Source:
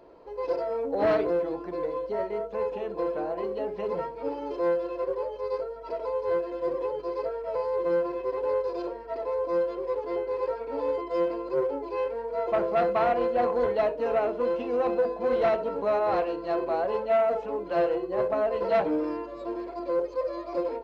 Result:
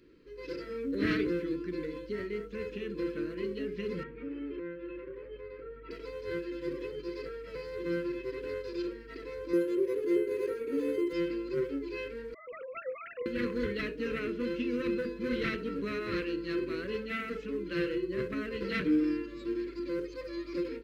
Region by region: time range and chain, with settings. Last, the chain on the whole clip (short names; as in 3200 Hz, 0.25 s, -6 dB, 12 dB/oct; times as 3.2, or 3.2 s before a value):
4.03–5.91 LPF 2600 Hz 24 dB/oct + compressor 4:1, threshold -32 dBFS
9.53–11.13 HPF 110 Hz + bell 390 Hz +11 dB 0.6 oct + decimation joined by straight lines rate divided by 4×
12.34–13.26 sine-wave speech + low shelf 330 Hz +4.5 dB
whole clip: Chebyshev band-stop 300–1900 Hz, order 2; AGC gain up to 4 dB